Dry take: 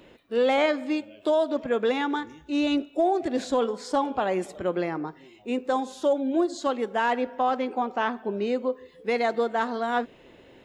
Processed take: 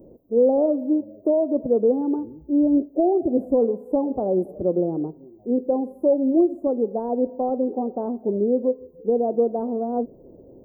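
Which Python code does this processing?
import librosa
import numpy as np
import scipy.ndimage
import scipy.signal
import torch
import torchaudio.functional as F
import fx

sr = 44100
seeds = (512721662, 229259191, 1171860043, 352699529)

y = scipy.signal.sosfilt(scipy.signal.cheby2(4, 80, [2200.0, 5400.0], 'bandstop', fs=sr, output='sos'), x)
y = y * librosa.db_to_amplitude(6.5)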